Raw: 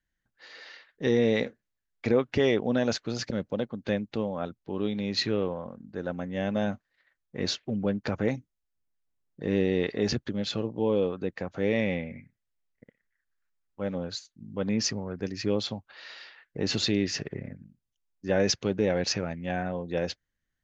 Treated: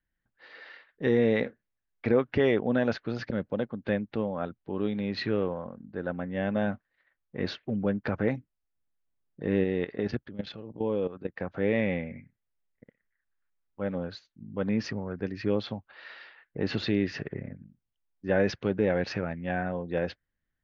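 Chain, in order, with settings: Gaussian low-pass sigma 2.4 samples; 9.64–11.40 s: level held to a coarse grid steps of 14 dB; dynamic bell 1.6 kHz, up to +4 dB, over -52 dBFS, Q 2.1

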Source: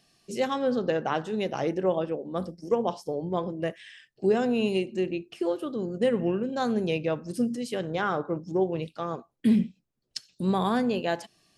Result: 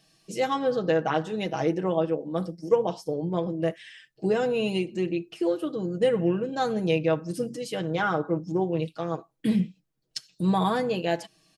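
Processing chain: comb 6.3 ms, depth 69%

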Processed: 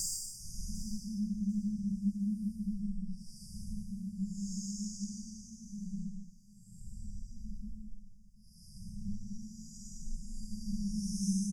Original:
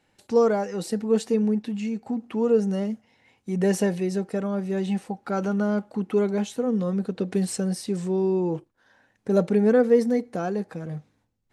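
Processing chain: Chebyshev shaper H 2 -8 dB, 8 -16 dB, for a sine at -8 dBFS; Paulstretch 8×, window 0.10 s, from 1.22 s; brick-wall FIR band-stop 190–4700 Hz; on a send: feedback delay 745 ms, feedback 29%, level -19.5 dB; on the sum: trim +2 dB

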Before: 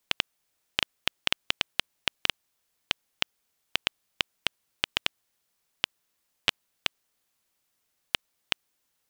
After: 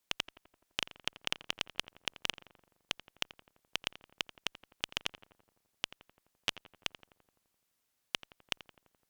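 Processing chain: one-sided clip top -18.5 dBFS; on a send: filtered feedback delay 85 ms, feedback 67%, low-pass 1.9 kHz, level -13.5 dB; on the sum: trim -4 dB

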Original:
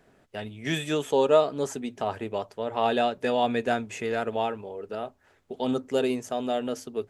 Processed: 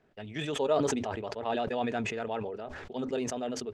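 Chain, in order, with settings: low-pass 5.1 kHz 12 dB/octave; tempo 1.9×; decay stretcher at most 29 dB/s; trim -7 dB

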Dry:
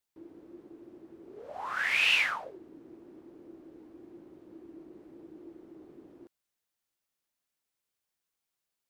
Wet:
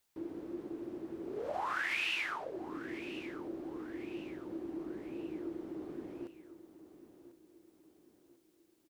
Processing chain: compression 6:1, threshold -42 dBFS, peak gain reduction 19 dB; feedback delay 1044 ms, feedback 42%, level -14 dB; trim +8 dB

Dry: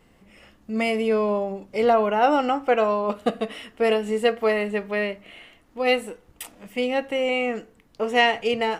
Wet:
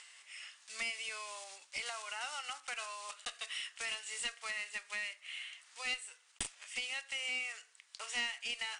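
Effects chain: block-companded coder 5-bit; upward compressor, threshold -43 dBFS; high-pass 1.4 kHz 12 dB/octave; treble shelf 5.1 kHz -8 dB; compression 2.5:1, threshold -43 dBFS, peak gain reduction 16 dB; differentiator; one-sided clip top -46.5 dBFS; steep low-pass 9.6 kHz 96 dB/octave; trim +13 dB

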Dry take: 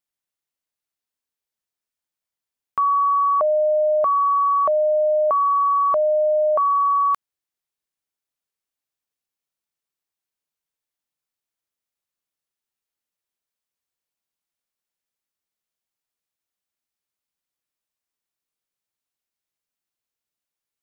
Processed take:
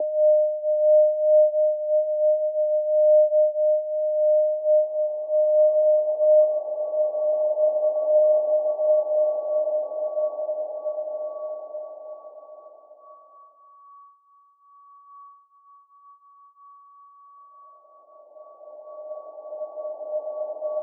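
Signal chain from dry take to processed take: Paulstretch 22×, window 0.50 s, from 3.65 s; Chebyshev band-pass 280–860 Hz, order 5

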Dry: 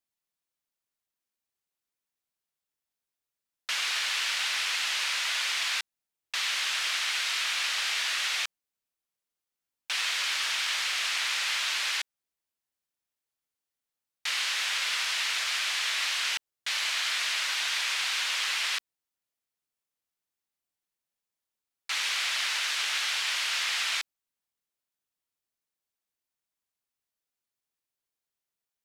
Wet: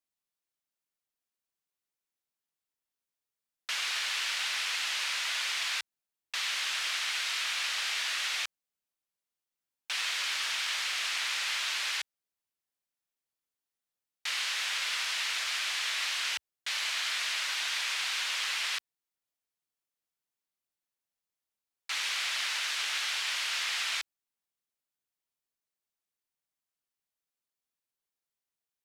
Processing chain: peaking EQ 72 Hz -5 dB 0.58 oct; trim -3 dB

